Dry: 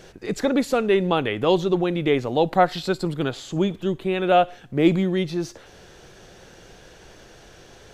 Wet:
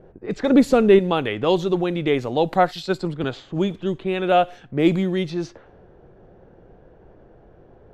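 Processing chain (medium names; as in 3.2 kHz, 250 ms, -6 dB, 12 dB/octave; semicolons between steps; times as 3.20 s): level-controlled noise filter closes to 630 Hz, open at -18.5 dBFS; 0.50–0.99 s: bass shelf 490 Hz +10 dB; 2.71–3.24 s: three bands expanded up and down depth 70%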